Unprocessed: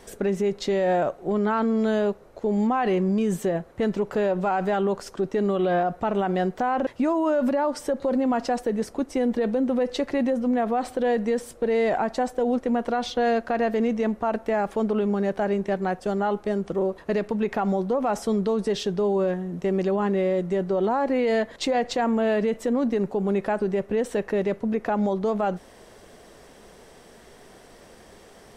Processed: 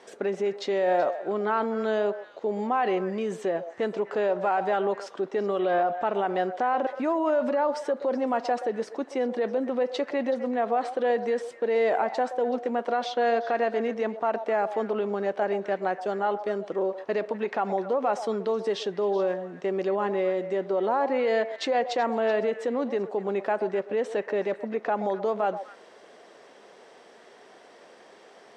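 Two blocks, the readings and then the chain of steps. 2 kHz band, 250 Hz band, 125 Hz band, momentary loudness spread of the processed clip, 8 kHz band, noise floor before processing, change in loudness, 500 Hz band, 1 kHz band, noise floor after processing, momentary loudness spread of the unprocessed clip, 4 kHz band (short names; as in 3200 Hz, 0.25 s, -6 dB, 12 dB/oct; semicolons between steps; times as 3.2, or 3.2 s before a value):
-0.5 dB, -8.0 dB, under -10 dB, 5 LU, n/a, -50 dBFS, -2.5 dB, -1.5 dB, 0.0 dB, -52 dBFS, 4 LU, -2.5 dB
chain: HPF 370 Hz 12 dB/oct; air absorption 97 m; on a send: delay with a stepping band-pass 0.126 s, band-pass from 650 Hz, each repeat 1.4 oct, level -9 dB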